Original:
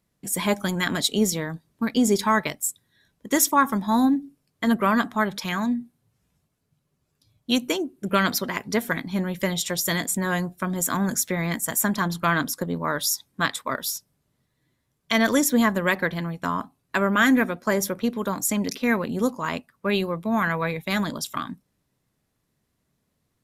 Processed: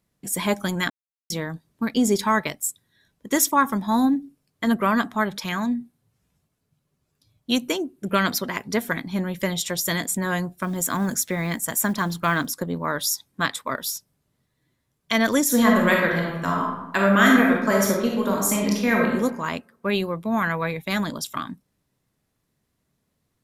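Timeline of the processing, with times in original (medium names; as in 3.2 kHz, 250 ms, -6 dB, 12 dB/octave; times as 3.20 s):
0.90–1.30 s: mute
10.54–12.51 s: short-mantissa float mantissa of 4-bit
15.44–19.07 s: reverb throw, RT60 0.97 s, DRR -1.5 dB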